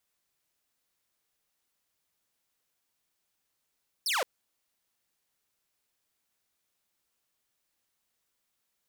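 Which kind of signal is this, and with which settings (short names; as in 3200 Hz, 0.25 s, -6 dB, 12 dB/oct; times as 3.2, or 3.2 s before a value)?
laser zap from 5800 Hz, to 450 Hz, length 0.17 s saw, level -23.5 dB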